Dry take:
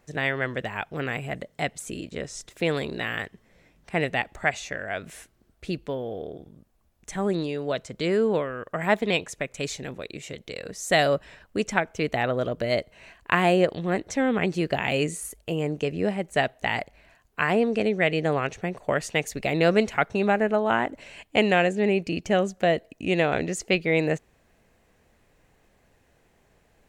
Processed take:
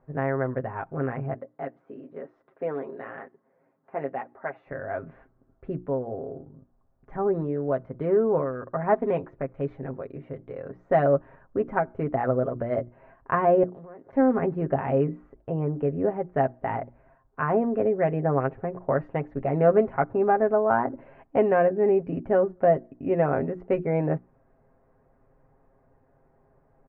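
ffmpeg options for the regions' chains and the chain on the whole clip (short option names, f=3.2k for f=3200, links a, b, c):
-filter_complex "[0:a]asettb=1/sr,asplit=3[a][b][c];[a]atrim=end=1.344[d];[b]atrim=start=1.34:end=4.67,asetpts=PTS-STARTPTS,afade=t=in:d=0.004:c=qsin,afade=t=out:st=3.326:d=0.004:c=qsin,highpass=280,flanger=delay=2.3:depth=8.6:regen=-37:speed=1:shape=triangular[e];[c]atrim=start=4.666[f];[d][e]acrossfade=d=0.004:c1=hsin:c2=qsin[g];[g][f]acrossfade=d=0.004:c1=qsin:c2=hsin,asettb=1/sr,asplit=3[h][i][j];[h]atrim=end=13.634[k];[i]atrim=start=13.63:end=14.13,asetpts=PTS-STARTPTS,afade=t=in:d=0.004:c=qsin,afade=t=out:st=0.496:d=0.004:c=qsin,highpass=f=340:p=1,acompressor=threshold=-39dB:ratio=16:attack=3.2:release=140:knee=1:detection=peak[l];[j]atrim=start=14.126[m];[k][l]acrossfade=d=0.004:c1=hsin:c2=qsin[n];[n][m]acrossfade=d=0.004:c1=qsin:c2=hsin,lowpass=f=1.3k:w=0.5412,lowpass=f=1.3k:w=1.3066,bandreject=f=60:t=h:w=6,bandreject=f=120:t=h:w=6,bandreject=f=180:t=h:w=6,bandreject=f=240:t=h:w=6,bandreject=f=300:t=h:w=6,bandreject=f=360:t=h:w=6,aecho=1:1:7.5:0.62"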